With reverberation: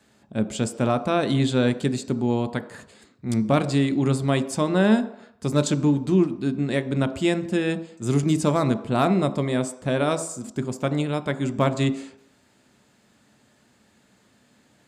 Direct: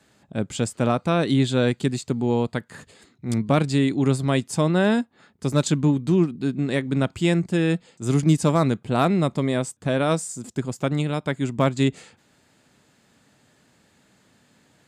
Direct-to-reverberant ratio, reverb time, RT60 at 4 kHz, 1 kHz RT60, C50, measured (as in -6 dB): 10.0 dB, 0.75 s, 0.70 s, 0.80 s, 14.0 dB